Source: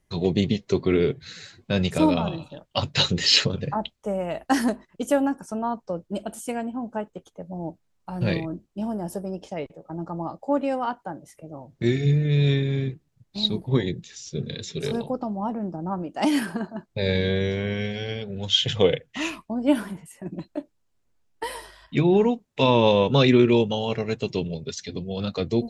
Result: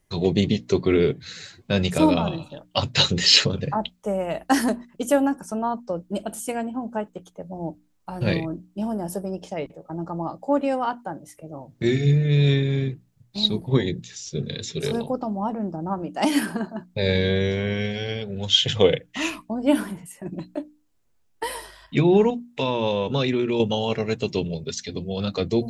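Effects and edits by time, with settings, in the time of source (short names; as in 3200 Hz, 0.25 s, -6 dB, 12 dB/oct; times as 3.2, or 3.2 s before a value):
22.3–23.6 compressor 2:1, threshold -26 dBFS
whole clip: high shelf 9900 Hz +6.5 dB; notches 60/120/180/240/300 Hz; gain +2 dB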